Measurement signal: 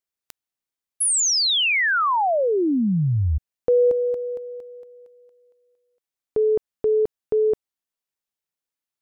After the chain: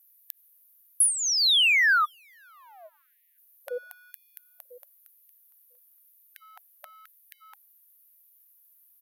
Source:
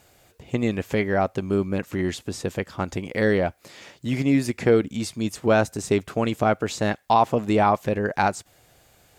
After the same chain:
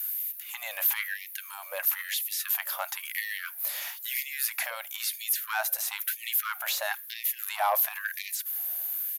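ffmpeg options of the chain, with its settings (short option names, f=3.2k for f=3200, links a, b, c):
-filter_complex "[0:a]acompressor=threshold=-28dB:ratio=2:attack=0.31:release=21:knee=6:detection=peak,highshelf=f=3.4k:g=10,acrossover=split=4800[a][b];[b]acompressor=threshold=-40dB:ratio=4:attack=1:release=60[c];[a][c]amix=inputs=2:normalize=0,equalizer=f=200:t=o:w=0.33:g=6,equalizer=f=1.6k:t=o:w=0.33:g=3,equalizer=f=5k:t=o:w=0.33:g=-3,aexciter=amount=13:drive=7.9:freq=11k,aresample=32000,aresample=44100,asoftclip=type=tanh:threshold=-16dB,afftfilt=real='re*gte(b*sr/1024,510*pow(1800/510,0.5+0.5*sin(2*PI*1*pts/sr)))':imag='im*gte(b*sr/1024,510*pow(1800/510,0.5+0.5*sin(2*PI*1*pts/sr)))':win_size=1024:overlap=0.75,volume=2.5dB"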